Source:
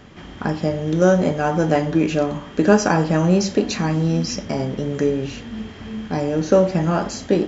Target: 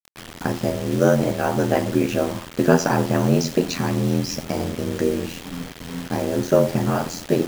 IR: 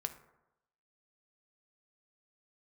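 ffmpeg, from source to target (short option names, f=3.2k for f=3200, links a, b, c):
-af "aeval=exprs='val(0)*sin(2*PI*42*n/s)':c=same,acrusher=bits=5:mix=0:aa=0.000001,volume=1dB"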